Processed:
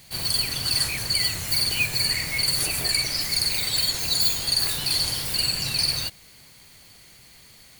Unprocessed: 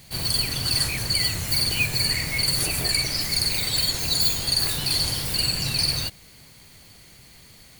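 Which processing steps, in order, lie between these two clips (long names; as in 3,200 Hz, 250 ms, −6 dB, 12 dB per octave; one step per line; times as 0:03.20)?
low-shelf EQ 490 Hz −5.5 dB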